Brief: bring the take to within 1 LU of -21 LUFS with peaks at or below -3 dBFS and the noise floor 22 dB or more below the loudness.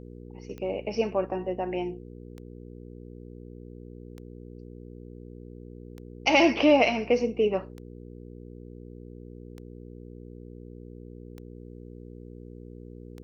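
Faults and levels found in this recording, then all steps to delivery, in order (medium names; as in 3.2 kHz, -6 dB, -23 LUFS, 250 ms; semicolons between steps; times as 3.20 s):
clicks found 8; hum 60 Hz; highest harmonic 480 Hz; hum level -41 dBFS; loudness -25.0 LUFS; peak level -8.5 dBFS; loudness target -21.0 LUFS
-> de-click; de-hum 60 Hz, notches 8; trim +4 dB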